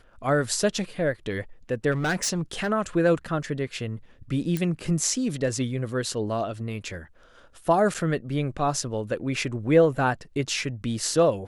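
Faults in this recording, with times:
1.91–2.72 s: clipped -21.5 dBFS
4.57 s: pop -14 dBFS
7.94–7.95 s: dropout 6.6 ms

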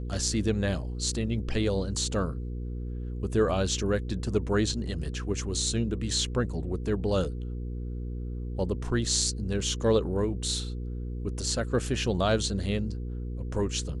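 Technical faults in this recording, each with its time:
hum 60 Hz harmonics 8 -34 dBFS

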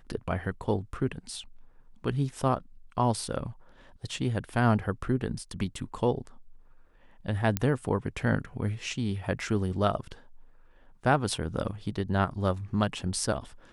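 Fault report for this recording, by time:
7.57 s: pop -11 dBFS

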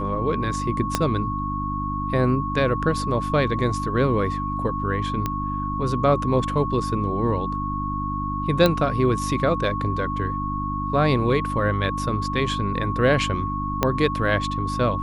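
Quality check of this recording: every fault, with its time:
hum 50 Hz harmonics 6 -29 dBFS
whine 1.1 kHz -27 dBFS
0.95 s: pop -5 dBFS
5.26 s: pop -11 dBFS
8.66 s: pop -6 dBFS
13.83 s: pop -5 dBFS

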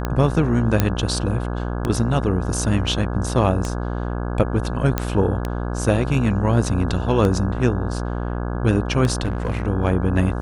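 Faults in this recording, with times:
buzz 60 Hz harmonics 28 -25 dBFS
tick 33 1/3 rpm -10 dBFS
0.80 s: pop -3 dBFS
4.98 s: pop -6 dBFS
9.23–9.63 s: clipped -17.5 dBFS

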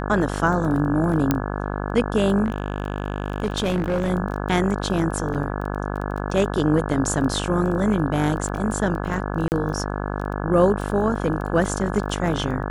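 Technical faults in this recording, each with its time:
buzz 50 Hz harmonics 34 -27 dBFS
crackle 12 per s -29 dBFS
1.31 s: pop -5 dBFS
2.44–4.11 s: clipped -17.5 dBFS
5.34–5.35 s: dropout 7.4 ms
9.48–9.52 s: dropout 39 ms

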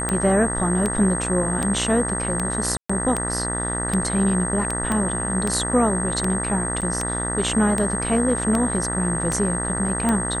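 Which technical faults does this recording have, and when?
buzz 60 Hz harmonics 33 -28 dBFS
tick 78 rpm -9 dBFS
whine 8.4 kHz -26 dBFS
2.77–2.90 s: dropout 125 ms
4.92 s: pop -11 dBFS
6.81–6.82 s: dropout 7.5 ms

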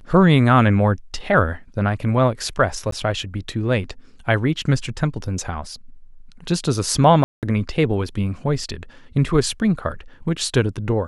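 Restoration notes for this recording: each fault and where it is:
2.91–2.92 s: dropout 13 ms
7.24–7.43 s: dropout 188 ms

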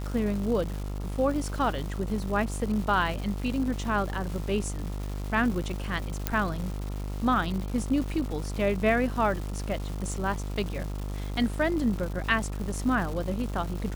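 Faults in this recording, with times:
buzz 50 Hz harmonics 28 -33 dBFS
crackle 460 per s -35 dBFS
6.27 s: pop -9 dBFS

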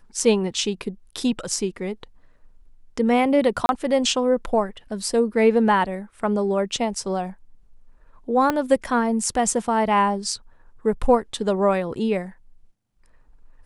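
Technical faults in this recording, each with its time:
3.66–3.69 s: dropout 31 ms
8.50 s: pop -8 dBFS

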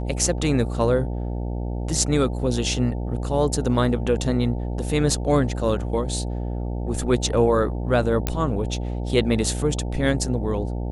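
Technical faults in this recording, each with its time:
buzz 60 Hz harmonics 15 -27 dBFS
8.27 s: pop -7 dBFS

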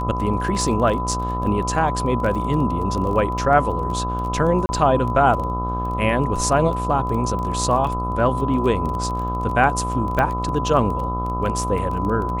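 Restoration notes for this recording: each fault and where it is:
buzz 60 Hz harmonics 22 -26 dBFS
crackle 17 per s -27 dBFS
whine 1 kHz -25 dBFS
4.66–4.69 s: dropout 30 ms
10.19 s: pop -9 dBFS

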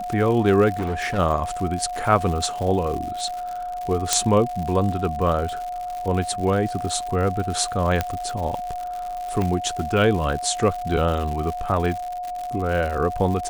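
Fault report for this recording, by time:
crackle 150 per s -28 dBFS
whine 720 Hz -27 dBFS
0.79–1.19 s: clipped -21 dBFS
4.13 s: pop -2 dBFS
8.01 s: pop -7 dBFS
9.42 s: pop -13 dBFS

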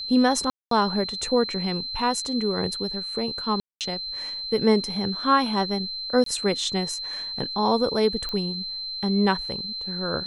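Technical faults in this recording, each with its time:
whine 4.1 kHz -30 dBFS
0.50–0.71 s: dropout 213 ms
3.60–3.81 s: dropout 208 ms
6.24–6.26 s: dropout 23 ms
8.29 s: pop -17 dBFS

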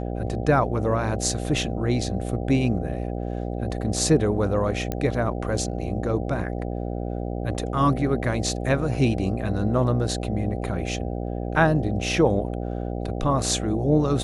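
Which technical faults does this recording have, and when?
buzz 60 Hz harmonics 13 -29 dBFS
4.92 s: pop -13 dBFS

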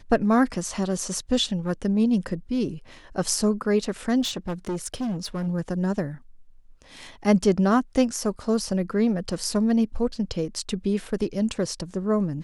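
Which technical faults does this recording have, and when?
4.21–5.48 s: clipped -24.5 dBFS

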